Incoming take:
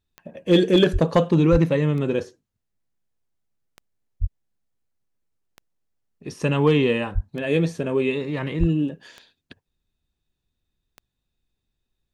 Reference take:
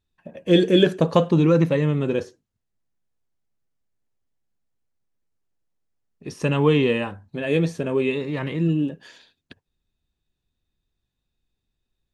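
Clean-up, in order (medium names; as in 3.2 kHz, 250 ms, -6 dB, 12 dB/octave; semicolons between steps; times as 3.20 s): clip repair -8.5 dBFS; de-click; de-plosive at 0.92/1.51/4.20/7.14/8.59 s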